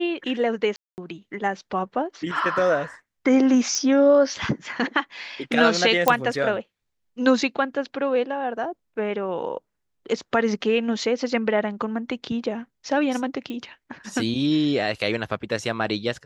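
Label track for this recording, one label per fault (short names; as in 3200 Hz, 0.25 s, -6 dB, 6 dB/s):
0.760000	0.980000	gap 0.219 s
3.750000	3.750000	pop -14 dBFS
6.080000	6.080000	pop -3 dBFS
13.500000	13.500000	pop -21 dBFS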